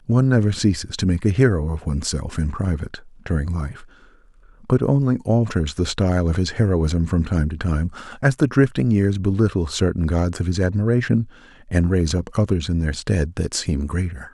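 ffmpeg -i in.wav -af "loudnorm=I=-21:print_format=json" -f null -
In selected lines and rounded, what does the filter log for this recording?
"input_i" : "-21.0",
"input_tp" : "-2.6",
"input_lra" : "2.8",
"input_thresh" : "-31.4",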